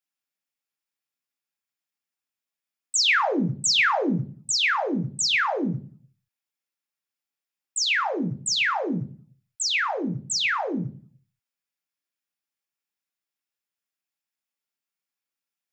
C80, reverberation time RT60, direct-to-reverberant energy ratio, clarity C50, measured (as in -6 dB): 21.5 dB, 0.40 s, 6.0 dB, 17.0 dB